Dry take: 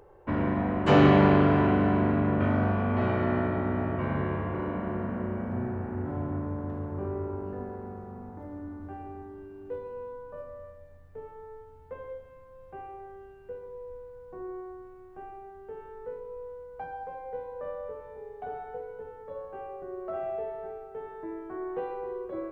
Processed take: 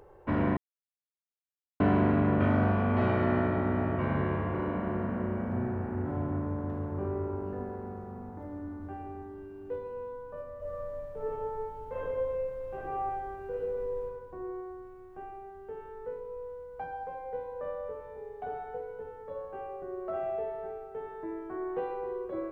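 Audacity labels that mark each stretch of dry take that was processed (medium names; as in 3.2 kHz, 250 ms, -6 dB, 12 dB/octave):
0.570000	1.800000	mute
10.570000	14.040000	reverb throw, RT60 1.4 s, DRR -8 dB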